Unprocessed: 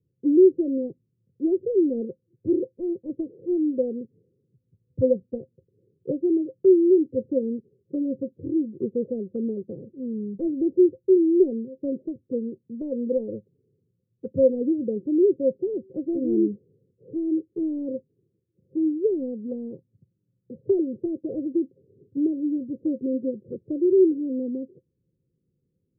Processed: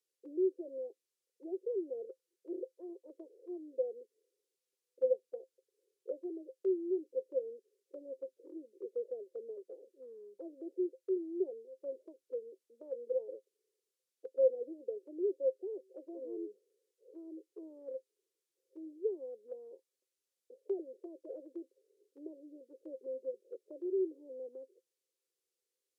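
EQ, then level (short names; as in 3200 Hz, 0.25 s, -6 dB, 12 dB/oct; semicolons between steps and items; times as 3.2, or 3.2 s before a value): steep high-pass 390 Hz 36 dB/oct; air absorption 51 m; differentiator; +13.5 dB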